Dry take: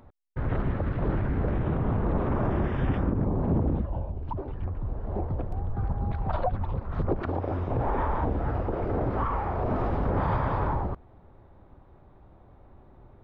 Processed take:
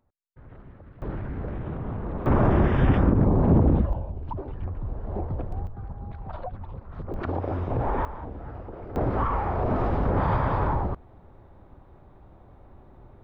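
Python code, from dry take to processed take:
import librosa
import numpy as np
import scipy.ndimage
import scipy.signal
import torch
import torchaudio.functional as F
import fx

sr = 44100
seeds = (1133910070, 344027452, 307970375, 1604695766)

y = fx.gain(x, sr, db=fx.steps((0.0, -19.0), (1.02, -5.5), (2.26, 6.5), (3.93, 0.0), (5.67, -8.0), (7.14, 1.0), (8.05, -10.0), (8.96, 2.5)))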